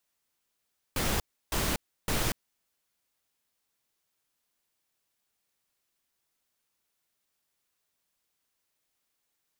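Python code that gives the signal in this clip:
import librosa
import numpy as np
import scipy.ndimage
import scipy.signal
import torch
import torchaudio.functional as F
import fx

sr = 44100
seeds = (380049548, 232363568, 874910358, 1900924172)

y = fx.noise_burst(sr, seeds[0], colour='pink', on_s=0.24, off_s=0.32, bursts=3, level_db=-28.5)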